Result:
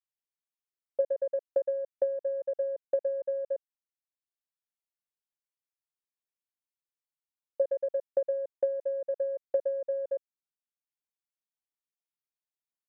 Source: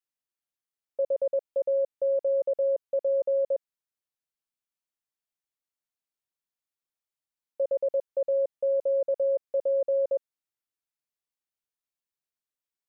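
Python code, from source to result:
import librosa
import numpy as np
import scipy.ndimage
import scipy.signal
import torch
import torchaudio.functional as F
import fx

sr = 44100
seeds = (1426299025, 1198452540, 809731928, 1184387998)

y = fx.transient(x, sr, attack_db=12, sustain_db=-5)
y = y * 10.0 ** (-9.0 / 20.0)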